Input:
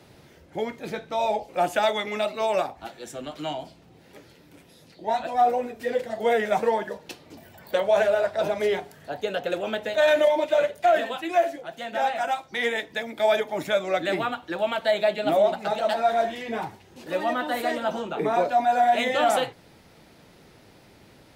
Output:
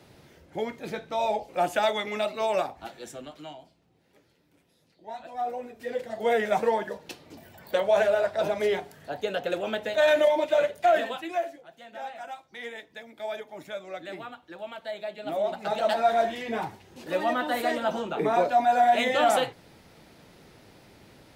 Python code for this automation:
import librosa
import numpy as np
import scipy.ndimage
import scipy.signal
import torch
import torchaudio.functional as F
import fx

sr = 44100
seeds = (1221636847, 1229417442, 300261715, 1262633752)

y = fx.gain(x, sr, db=fx.line((3.05, -2.0), (3.62, -14.0), (5.09, -14.0), (6.37, -1.5), (11.08, -1.5), (11.68, -13.0), (15.12, -13.0), (15.81, -0.5)))